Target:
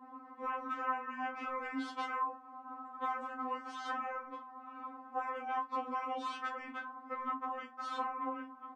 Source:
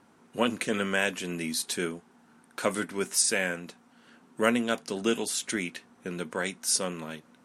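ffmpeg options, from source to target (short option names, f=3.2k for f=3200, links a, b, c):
-af "highpass=120,afftfilt=real='re*lt(hypot(re,im),0.0631)':imag='im*lt(hypot(re,im),0.0631)':win_size=1024:overlap=0.75,lowpass=f=1.3k:t=q:w=4.8,acompressor=threshold=-42dB:ratio=6,agate=range=-33dB:threshold=-53dB:ratio=3:detection=peak,asetrate=37485,aresample=44100,aecho=1:1:26|48:0.299|0.158,afftfilt=real='re*3.46*eq(mod(b,12),0)':imag='im*3.46*eq(mod(b,12),0)':win_size=2048:overlap=0.75,volume=10dB"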